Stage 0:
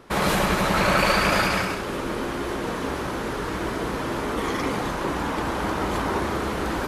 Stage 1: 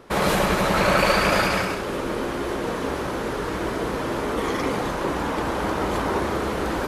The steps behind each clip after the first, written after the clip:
parametric band 510 Hz +3.5 dB 0.94 octaves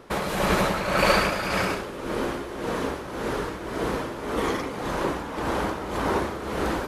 amplitude tremolo 1.8 Hz, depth 64%

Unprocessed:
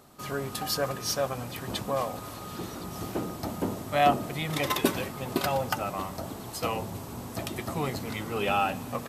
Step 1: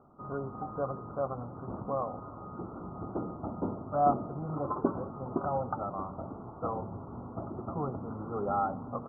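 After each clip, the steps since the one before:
Chebyshev low-pass filter 1,400 Hz, order 8
level −3 dB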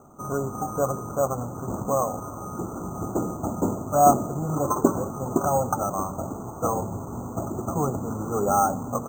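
decimation without filtering 6×
level +9 dB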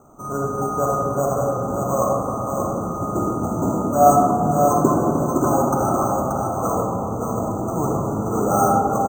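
single-tap delay 581 ms −5 dB
convolution reverb RT60 2.5 s, pre-delay 10 ms, DRR −2.5 dB

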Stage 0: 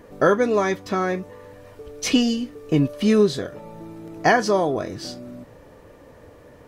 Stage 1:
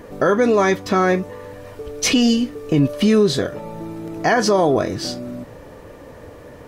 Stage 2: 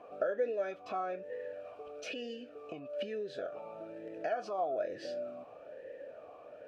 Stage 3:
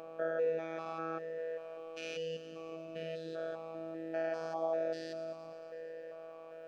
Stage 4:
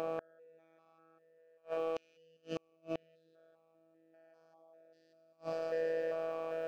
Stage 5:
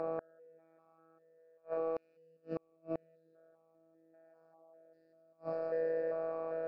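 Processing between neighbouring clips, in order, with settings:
brickwall limiter −15 dBFS, peak gain reduction 9.5 dB; level +7.5 dB
downward compressor 6 to 1, threshold −23 dBFS, peak gain reduction 11.5 dB; formant filter swept between two vowels a-e 1.1 Hz
spectrum averaged block by block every 200 ms; delay with a high-pass on its return 114 ms, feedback 77%, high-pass 4,700 Hz, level −10 dB; phases set to zero 163 Hz; level +5.5 dB
brickwall limiter −27.5 dBFS, peak gain reduction 4.5 dB; gate with flip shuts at −34 dBFS, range −37 dB; level +11 dB
moving average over 14 samples; level +1 dB

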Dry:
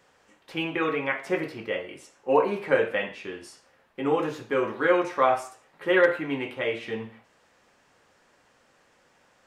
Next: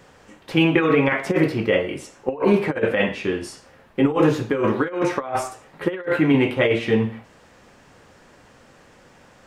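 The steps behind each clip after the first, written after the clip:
compressor whose output falls as the input rises −27 dBFS, ratio −0.5
low-shelf EQ 320 Hz +10.5 dB
level +5.5 dB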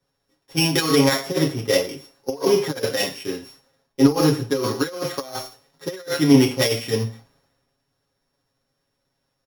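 samples sorted by size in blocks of 8 samples
comb filter 7.3 ms, depth 73%
multiband upward and downward expander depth 70%
level −4 dB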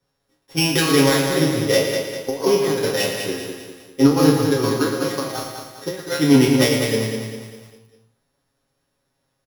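peak hold with a decay on every bin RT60 0.39 s
on a send: repeating echo 200 ms, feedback 45%, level −6.5 dB
on the sum: feedback echo at a low word length 114 ms, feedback 35%, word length 7 bits, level −8.5 dB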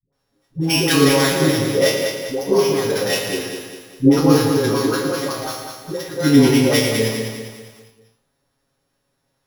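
all-pass dispersion highs, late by 127 ms, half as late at 460 Hz
level +1.5 dB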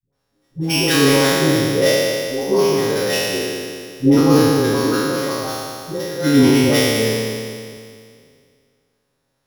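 peak hold with a decay on every bin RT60 2.17 s
level −2.5 dB

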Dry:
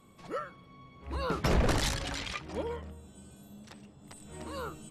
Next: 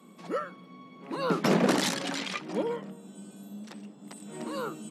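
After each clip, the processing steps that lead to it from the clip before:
Butterworth high-pass 180 Hz 48 dB per octave
low-shelf EQ 240 Hz +11.5 dB
level +3 dB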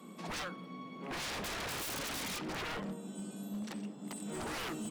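brickwall limiter −21 dBFS, peak gain reduction 9 dB
wave folding −37 dBFS
level +2.5 dB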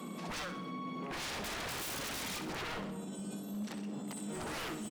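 brickwall limiter −44.5 dBFS, peak gain reduction 10 dB
repeating echo 63 ms, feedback 49%, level −10 dB
level +9 dB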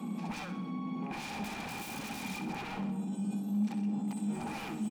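hollow resonant body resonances 210/810/2,400 Hz, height 15 dB, ringing for 35 ms
level −5.5 dB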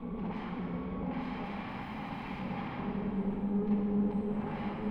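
lower of the sound and its delayed copy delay 0.97 ms
high-frequency loss of the air 450 metres
dense smooth reverb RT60 3.3 s, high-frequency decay 0.75×, DRR −2 dB

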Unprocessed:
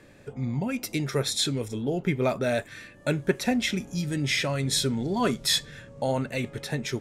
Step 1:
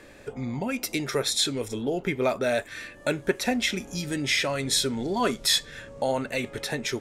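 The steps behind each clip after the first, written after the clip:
parametric band 140 Hz −10 dB 1.4 octaves
in parallel at 0 dB: downward compressor, threshold −36 dBFS, peak gain reduction 16 dB
on the sum: floating-point word with a short mantissa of 8 bits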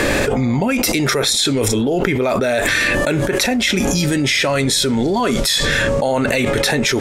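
envelope flattener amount 100%
level +2.5 dB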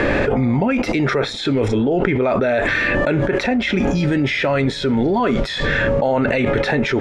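low-pass filter 2,300 Hz 12 dB per octave
notch filter 1,100 Hz, Q 26

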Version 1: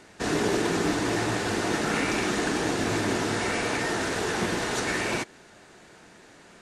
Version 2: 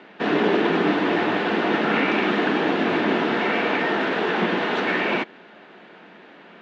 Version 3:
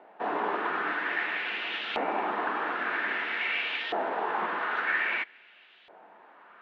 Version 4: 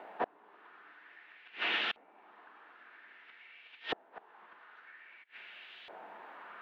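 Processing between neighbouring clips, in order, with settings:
elliptic band-pass filter 190–3,200 Hz, stop band 70 dB; level +6.5 dB
auto-filter band-pass saw up 0.51 Hz 700–3,500 Hz
gate with flip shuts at −22 dBFS, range −34 dB; one half of a high-frequency compander encoder only; level +1.5 dB

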